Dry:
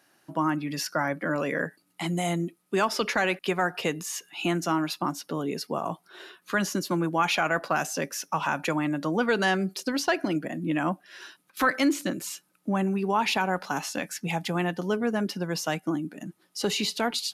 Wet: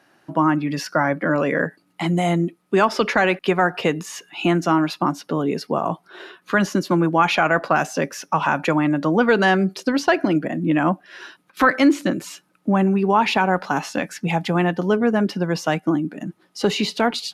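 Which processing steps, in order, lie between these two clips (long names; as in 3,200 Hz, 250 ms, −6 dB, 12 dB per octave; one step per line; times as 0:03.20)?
low-pass filter 2,300 Hz 6 dB per octave
level +8.5 dB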